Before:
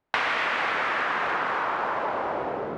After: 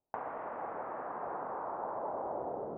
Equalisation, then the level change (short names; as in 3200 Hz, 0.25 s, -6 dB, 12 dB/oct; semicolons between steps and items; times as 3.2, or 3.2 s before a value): ladder low-pass 1000 Hz, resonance 30%; -3.5 dB